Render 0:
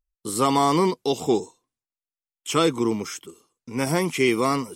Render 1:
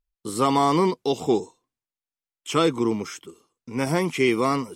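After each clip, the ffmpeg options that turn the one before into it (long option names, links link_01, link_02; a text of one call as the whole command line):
ffmpeg -i in.wav -af "highshelf=frequency=6400:gain=-8" out.wav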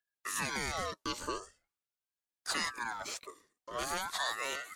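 ffmpeg -i in.wav -filter_complex "[0:a]lowshelf=frequency=290:gain=-9,acrossover=split=150|3000[link_01][link_02][link_03];[link_02]acompressor=threshold=-34dB:ratio=6[link_04];[link_01][link_04][link_03]amix=inputs=3:normalize=0,aeval=exprs='val(0)*sin(2*PI*1200*n/s+1200*0.4/0.43*sin(2*PI*0.43*n/s))':channel_layout=same" out.wav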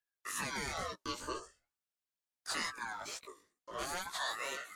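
ffmpeg -i in.wav -af "flanger=delay=15.5:depth=4.9:speed=2.2" out.wav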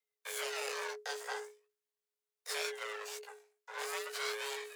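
ffmpeg -i in.wav -af "aeval=exprs='max(val(0),0)':channel_layout=same,afreqshift=420,volume=3dB" out.wav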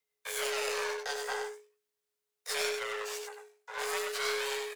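ffmpeg -i in.wav -af "aeval=exprs='0.0708*(cos(1*acos(clip(val(0)/0.0708,-1,1)))-cos(1*PI/2))+0.00251*(cos(4*acos(clip(val(0)/0.0708,-1,1)))-cos(4*PI/2))':channel_layout=same,aecho=1:1:95:0.531,volume=4dB" out.wav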